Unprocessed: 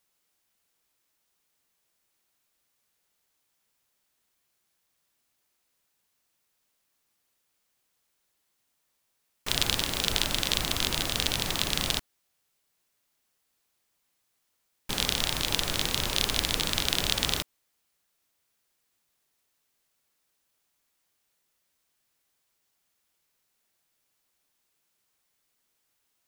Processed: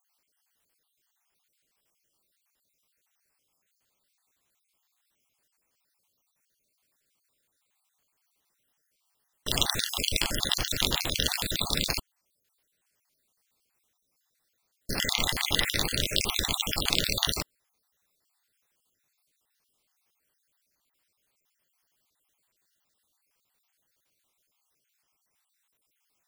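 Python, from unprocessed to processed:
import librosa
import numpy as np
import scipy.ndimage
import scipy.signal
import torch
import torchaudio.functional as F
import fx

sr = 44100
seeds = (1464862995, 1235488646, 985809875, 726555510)

y = fx.spec_dropout(x, sr, seeds[0], share_pct=53)
y = fx.peak_eq(y, sr, hz=2000.0, db=12.5, octaves=0.22, at=(15.0, 15.78))
y = F.gain(torch.from_numpy(y), 3.0).numpy()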